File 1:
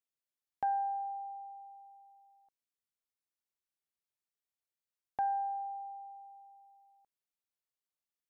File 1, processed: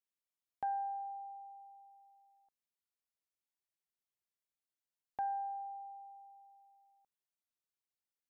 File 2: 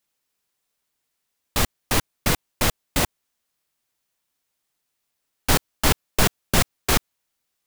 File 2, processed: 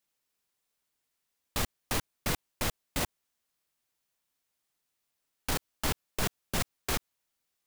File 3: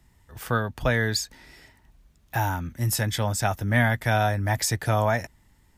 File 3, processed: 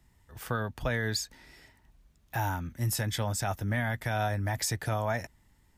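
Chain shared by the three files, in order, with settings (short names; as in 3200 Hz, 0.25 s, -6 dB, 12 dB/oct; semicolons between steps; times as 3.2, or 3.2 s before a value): limiter -15 dBFS; gain -4.5 dB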